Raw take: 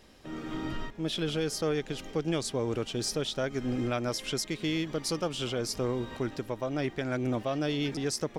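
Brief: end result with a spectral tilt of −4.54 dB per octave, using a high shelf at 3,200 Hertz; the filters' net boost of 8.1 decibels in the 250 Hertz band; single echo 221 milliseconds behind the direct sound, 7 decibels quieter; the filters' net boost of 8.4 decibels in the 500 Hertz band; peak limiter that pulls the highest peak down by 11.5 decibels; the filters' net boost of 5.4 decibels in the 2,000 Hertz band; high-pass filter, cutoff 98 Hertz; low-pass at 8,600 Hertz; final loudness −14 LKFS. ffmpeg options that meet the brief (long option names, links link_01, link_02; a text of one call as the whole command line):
ffmpeg -i in.wav -af "highpass=98,lowpass=8600,equalizer=frequency=250:width_type=o:gain=7.5,equalizer=frequency=500:width_type=o:gain=7.5,equalizer=frequency=2000:width_type=o:gain=8.5,highshelf=frequency=3200:gain=-6,alimiter=limit=-23dB:level=0:latency=1,aecho=1:1:221:0.447,volume=17.5dB" out.wav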